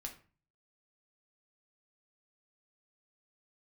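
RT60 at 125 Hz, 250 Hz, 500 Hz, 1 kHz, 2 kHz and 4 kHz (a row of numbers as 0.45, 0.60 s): 0.65, 0.50, 0.35, 0.40, 0.35, 0.30 s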